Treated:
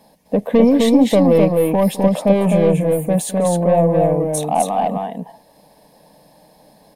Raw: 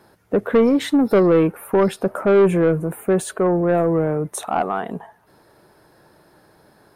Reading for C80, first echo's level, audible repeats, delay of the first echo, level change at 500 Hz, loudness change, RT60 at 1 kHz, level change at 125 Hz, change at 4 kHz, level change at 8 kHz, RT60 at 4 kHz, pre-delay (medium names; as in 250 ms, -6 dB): no reverb, -18.0 dB, 2, 209 ms, +2.5 dB, +3.0 dB, no reverb, +5.5 dB, +5.0 dB, +6.5 dB, no reverb, no reverb